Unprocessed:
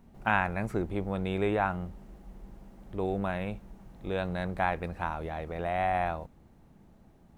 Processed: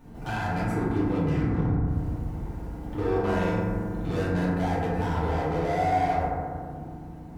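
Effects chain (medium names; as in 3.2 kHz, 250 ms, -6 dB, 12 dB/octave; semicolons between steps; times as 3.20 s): peak limiter -21.5 dBFS, peak gain reduction 10.5 dB; 1.12 s: tape stop 0.75 s; compression 4:1, threshold -33 dBFS, peak gain reduction 6.5 dB; hard clipper -38.5 dBFS, distortion -7 dB; 2.86–4.27 s: flutter echo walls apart 7.7 m, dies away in 0.43 s; FDN reverb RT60 2 s, low-frequency decay 1.5×, high-frequency decay 0.25×, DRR -10 dB; trim +3 dB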